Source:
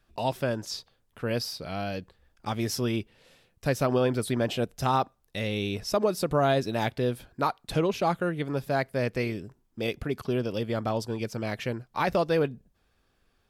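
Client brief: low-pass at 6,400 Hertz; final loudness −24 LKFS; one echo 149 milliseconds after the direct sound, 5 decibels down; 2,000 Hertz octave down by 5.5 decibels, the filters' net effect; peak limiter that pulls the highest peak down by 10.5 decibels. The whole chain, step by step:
low-pass filter 6,400 Hz
parametric band 2,000 Hz −7.5 dB
brickwall limiter −24 dBFS
single-tap delay 149 ms −5 dB
level +10 dB

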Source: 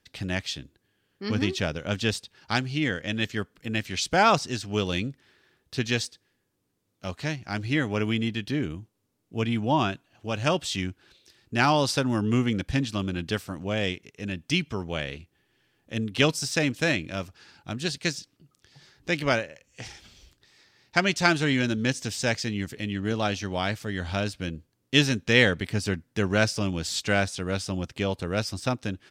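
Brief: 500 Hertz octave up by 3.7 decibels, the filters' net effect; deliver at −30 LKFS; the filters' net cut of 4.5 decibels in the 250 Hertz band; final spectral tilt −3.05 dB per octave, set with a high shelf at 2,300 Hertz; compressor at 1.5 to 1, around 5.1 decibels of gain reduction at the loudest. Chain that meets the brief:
parametric band 250 Hz −8 dB
parametric band 500 Hz +6 dB
high-shelf EQ 2,300 Hz +8 dB
downward compressor 1.5 to 1, threshold −25 dBFS
level −3 dB

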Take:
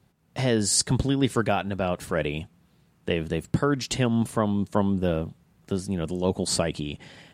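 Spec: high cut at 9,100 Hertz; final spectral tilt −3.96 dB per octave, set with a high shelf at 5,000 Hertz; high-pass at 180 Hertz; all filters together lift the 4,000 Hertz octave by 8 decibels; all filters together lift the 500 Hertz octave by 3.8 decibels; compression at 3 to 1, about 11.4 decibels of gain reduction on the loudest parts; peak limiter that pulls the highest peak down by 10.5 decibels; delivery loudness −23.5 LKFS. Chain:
high-pass filter 180 Hz
low-pass filter 9,100 Hz
parametric band 500 Hz +4.5 dB
parametric band 4,000 Hz +8 dB
high-shelf EQ 5,000 Hz +4.5 dB
downward compressor 3 to 1, threshold −28 dBFS
level +11 dB
brickwall limiter −11.5 dBFS

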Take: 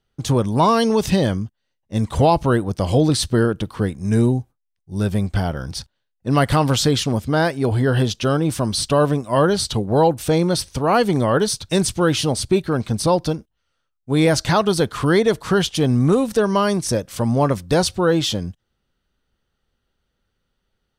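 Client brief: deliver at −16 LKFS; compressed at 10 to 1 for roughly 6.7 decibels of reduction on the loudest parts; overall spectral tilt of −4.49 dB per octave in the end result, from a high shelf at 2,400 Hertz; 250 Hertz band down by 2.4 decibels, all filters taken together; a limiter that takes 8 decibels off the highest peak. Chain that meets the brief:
parametric band 250 Hz −3.5 dB
high-shelf EQ 2,400 Hz +5.5 dB
downward compressor 10 to 1, threshold −18 dBFS
level +10.5 dB
brickwall limiter −6.5 dBFS

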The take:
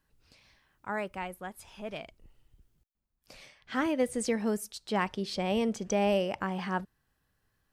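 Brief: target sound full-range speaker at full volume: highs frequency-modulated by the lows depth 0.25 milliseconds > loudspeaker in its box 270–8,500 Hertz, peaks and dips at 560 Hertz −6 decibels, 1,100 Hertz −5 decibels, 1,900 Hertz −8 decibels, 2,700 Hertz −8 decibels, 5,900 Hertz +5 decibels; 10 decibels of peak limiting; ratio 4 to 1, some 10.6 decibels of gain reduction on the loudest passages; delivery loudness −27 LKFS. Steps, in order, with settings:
downward compressor 4 to 1, threshold −35 dBFS
brickwall limiter −34 dBFS
highs frequency-modulated by the lows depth 0.25 ms
loudspeaker in its box 270–8,500 Hz, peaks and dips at 560 Hz −6 dB, 1,100 Hz −5 dB, 1,900 Hz −8 dB, 2,700 Hz −8 dB, 5,900 Hz +5 dB
level +21 dB

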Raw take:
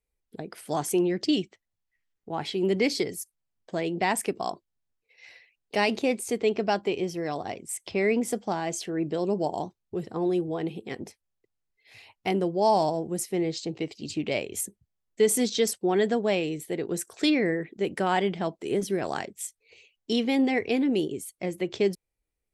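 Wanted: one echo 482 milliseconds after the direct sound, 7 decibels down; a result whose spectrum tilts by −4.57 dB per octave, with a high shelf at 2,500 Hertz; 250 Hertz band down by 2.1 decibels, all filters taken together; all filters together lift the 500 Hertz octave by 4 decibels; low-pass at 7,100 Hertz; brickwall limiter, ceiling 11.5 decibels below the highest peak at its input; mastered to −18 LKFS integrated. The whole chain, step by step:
low-pass filter 7,100 Hz
parametric band 250 Hz −6.5 dB
parametric band 500 Hz +7.5 dB
high-shelf EQ 2,500 Hz −4.5 dB
brickwall limiter −20 dBFS
single-tap delay 482 ms −7 dB
level +12 dB

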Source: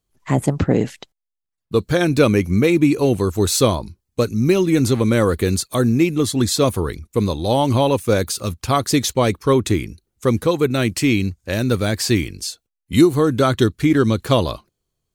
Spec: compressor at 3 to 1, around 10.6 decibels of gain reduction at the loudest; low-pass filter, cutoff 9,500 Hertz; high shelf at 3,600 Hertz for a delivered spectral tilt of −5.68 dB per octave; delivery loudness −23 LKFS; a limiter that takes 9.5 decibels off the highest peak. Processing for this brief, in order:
low-pass filter 9,500 Hz
high-shelf EQ 3,600 Hz −7.5 dB
downward compressor 3 to 1, threshold −23 dBFS
level +7 dB
brickwall limiter −13.5 dBFS

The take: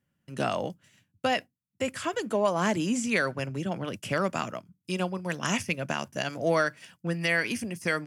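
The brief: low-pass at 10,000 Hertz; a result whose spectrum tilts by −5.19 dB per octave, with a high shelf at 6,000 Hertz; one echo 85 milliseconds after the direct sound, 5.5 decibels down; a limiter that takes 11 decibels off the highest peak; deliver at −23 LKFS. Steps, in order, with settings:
low-pass filter 10,000 Hz
high-shelf EQ 6,000 Hz −7 dB
brickwall limiter −24 dBFS
single-tap delay 85 ms −5.5 dB
level +11 dB

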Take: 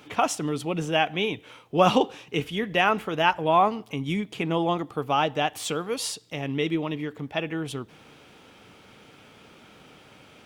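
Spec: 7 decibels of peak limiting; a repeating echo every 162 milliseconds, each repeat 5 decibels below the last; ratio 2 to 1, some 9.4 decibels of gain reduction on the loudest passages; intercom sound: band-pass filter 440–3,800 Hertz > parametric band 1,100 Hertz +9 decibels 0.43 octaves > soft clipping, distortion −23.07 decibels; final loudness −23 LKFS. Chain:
downward compressor 2 to 1, threshold −32 dBFS
brickwall limiter −21.5 dBFS
band-pass filter 440–3,800 Hz
parametric band 1,100 Hz +9 dB 0.43 octaves
repeating echo 162 ms, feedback 56%, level −5 dB
soft clipping −17.5 dBFS
level +10.5 dB

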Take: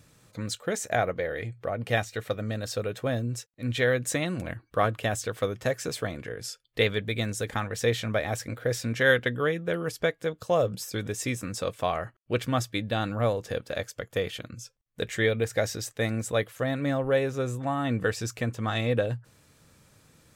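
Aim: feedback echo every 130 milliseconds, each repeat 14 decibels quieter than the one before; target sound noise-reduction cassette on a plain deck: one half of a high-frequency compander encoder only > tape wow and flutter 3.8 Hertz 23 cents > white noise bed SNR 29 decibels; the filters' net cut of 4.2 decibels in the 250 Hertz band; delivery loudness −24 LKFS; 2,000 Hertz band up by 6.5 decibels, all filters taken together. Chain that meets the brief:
parametric band 250 Hz −5.5 dB
parametric band 2,000 Hz +8 dB
repeating echo 130 ms, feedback 20%, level −14 dB
one half of a high-frequency compander encoder only
tape wow and flutter 3.8 Hz 23 cents
white noise bed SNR 29 dB
level +3 dB

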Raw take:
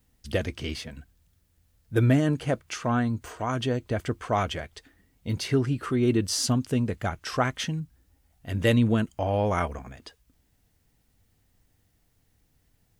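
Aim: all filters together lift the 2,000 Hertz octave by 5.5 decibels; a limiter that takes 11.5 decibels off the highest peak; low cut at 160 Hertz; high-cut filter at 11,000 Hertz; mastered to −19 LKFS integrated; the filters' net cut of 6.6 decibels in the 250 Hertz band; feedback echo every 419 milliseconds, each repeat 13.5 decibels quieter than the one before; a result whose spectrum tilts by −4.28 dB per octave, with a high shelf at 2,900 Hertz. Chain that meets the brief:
high-pass filter 160 Hz
low-pass filter 11,000 Hz
parametric band 250 Hz −7 dB
parametric band 2,000 Hz +8 dB
high-shelf EQ 2,900 Hz −3 dB
brickwall limiter −18 dBFS
repeating echo 419 ms, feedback 21%, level −13.5 dB
level +13 dB

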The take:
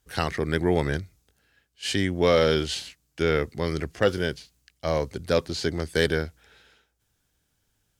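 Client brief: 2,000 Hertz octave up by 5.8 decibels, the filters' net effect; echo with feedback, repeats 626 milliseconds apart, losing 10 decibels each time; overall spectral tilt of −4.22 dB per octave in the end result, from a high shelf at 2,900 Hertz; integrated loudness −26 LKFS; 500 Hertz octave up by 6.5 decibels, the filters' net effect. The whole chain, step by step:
parametric band 500 Hz +7 dB
parametric band 2,000 Hz +4 dB
high-shelf EQ 2,900 Hz +8 dB
repeating echo 626 ms, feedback 32%, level −10 dB
level −5 dB

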